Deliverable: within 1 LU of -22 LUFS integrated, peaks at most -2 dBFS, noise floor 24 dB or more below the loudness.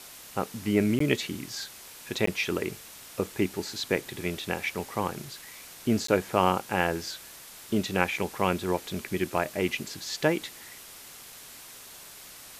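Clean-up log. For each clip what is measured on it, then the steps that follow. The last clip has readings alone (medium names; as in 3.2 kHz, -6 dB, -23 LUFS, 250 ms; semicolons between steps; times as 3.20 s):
dropouts 3; longest dropout 14 ms; noise floor -47 dBFS; noise floor target -54 dBFS; loudness -29.5 LUFS; peak level -5.0 dBFS; loudness target -22.0 LUFS
-> interpolate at 0.99/2.26/6.07 s, 14 ms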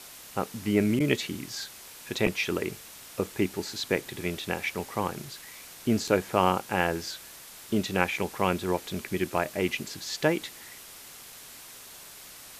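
dropouts 0; noise floor -47 dBFS; noise floor target -54 dBFS
-> noise reduction 7 dB, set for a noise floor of -47 dBFS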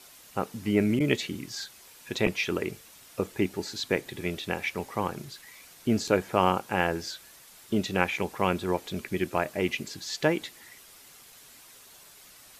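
noise floor -53 dBFS; noise floor target -54 dBFS
-> noise reduction 6 dB, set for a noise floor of -53 dBFS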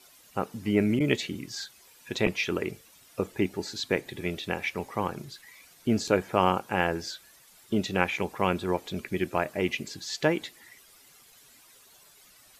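noise floor -57 dBFS; loudness -29.5 LUFS; peak level -5.5 dBFS; loudness target -22.0 LUFS
-> trim +7.5 dB; peak limiter -2 dBFS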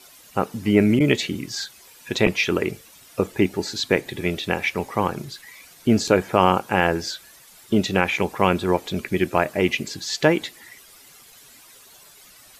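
loudness -22.0 LUFS; peak level -2.0 dBFS; noise floor -49 dBFS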